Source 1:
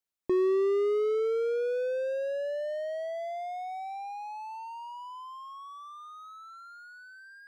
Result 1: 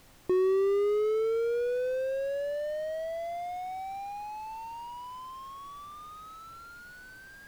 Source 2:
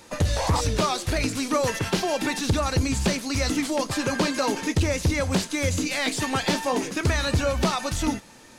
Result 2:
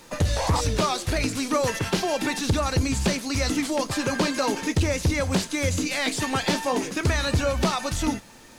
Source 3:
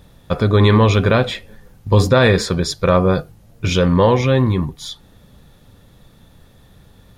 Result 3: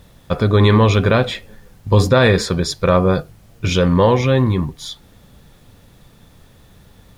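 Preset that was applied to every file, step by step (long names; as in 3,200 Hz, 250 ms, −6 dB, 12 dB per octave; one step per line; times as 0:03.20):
background noise pink −57 dBFS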